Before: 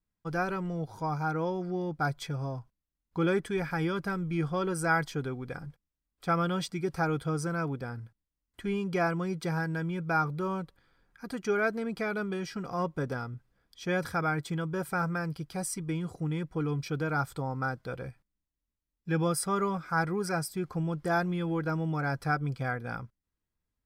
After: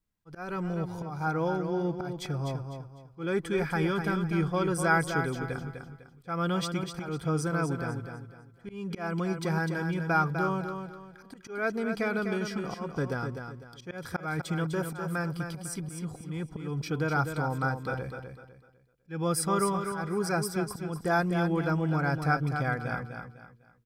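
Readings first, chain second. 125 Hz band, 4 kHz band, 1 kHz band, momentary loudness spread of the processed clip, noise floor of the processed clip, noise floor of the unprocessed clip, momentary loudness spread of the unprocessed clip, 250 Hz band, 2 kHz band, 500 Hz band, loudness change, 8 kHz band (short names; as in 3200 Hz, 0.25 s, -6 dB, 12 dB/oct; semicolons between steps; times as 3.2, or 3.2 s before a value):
+1.5 dB, +2.0 dB, +1.0 dB, 15 LU, -58 dBFS, under -85 dBFS, 10 LU, +1.5 dB, +1.0 dB, +1.0 dB, +1.0 dB, +2.0 dB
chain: auto swell 0.263 s; feedback echo 0.251 s, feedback 32%, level -7 dB; gain +2 dB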